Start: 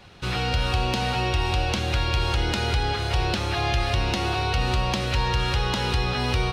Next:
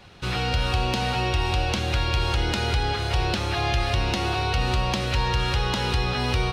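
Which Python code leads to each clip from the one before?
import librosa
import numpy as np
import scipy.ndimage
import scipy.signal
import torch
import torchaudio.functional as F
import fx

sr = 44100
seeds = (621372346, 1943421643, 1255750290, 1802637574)

y = x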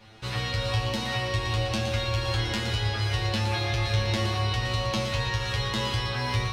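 y = fx.comb_fb(x, sr, f0_hz=110.0, decay_s=0.27, harmonics='all', damping=0.0, mix_pct=100)
y = y + 10.0 ** (-8.0 / 20.0) * np.pad(y, (int(117 * sr / 1000.0), 0))[:len(y)]
y = y * 10.0 ** (7.0 / 20.0)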